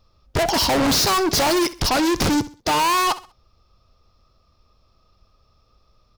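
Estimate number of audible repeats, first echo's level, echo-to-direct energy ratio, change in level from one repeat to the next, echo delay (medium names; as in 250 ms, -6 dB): 2, -16.5 dB, -16.0 dB, -10.0 dB, 65 ms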